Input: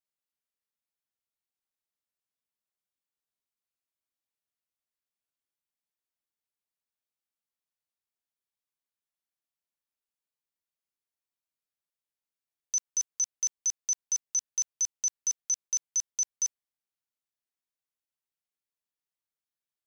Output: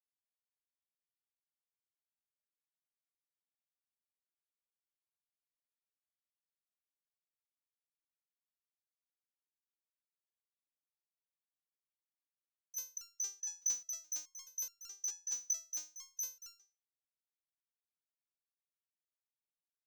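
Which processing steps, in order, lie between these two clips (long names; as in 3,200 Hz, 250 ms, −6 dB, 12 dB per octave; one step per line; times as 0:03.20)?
downward expander −31 dBFS
leveller curve on the samples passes 1
step-sequenced resonator 4.7 Hz 240–1,400 Hz
level +15 dB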